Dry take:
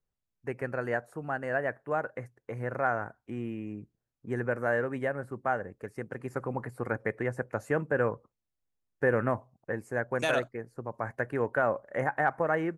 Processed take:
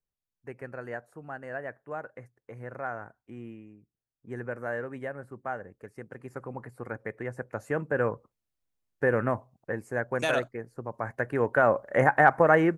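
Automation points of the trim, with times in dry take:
3.50 s -6.5 dB
3.80 s -15 dB
4.35 s -5 dB
7.09 s -5 dB
8.08 s +1 dB
11.11 s +1 dB
12.01 s +8 dB

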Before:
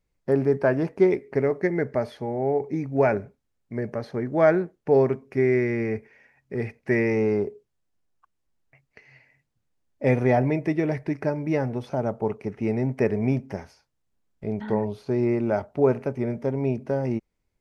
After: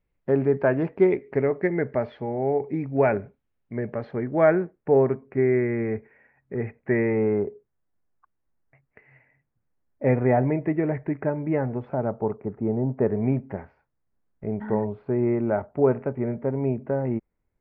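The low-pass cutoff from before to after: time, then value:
low-pass 24 dB/octave
4.17 s 3.1 kHz
5.00 s 2 kHz
12.00 s 2 kHz
12.83 s 1.1 kHz
13.29 s 2 kHz

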